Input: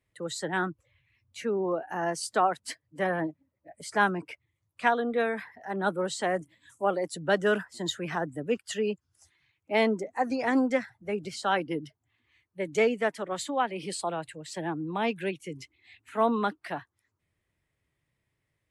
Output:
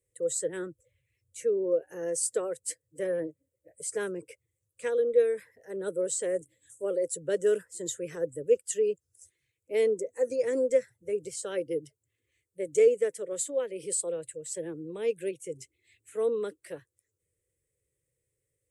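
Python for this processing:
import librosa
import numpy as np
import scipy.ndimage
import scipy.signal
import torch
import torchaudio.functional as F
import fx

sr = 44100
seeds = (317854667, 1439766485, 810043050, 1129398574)

y = fx.curve_eq(x, sr, hz=(130.0, 230.0, 510.0, 730.0, 2000.0, 4400.0, 8100.0, 12000.0), db=(0, -11, 13, -20, -6, -6, 15, 8))
y = y * librosa.db_to_amplitude(-4.5)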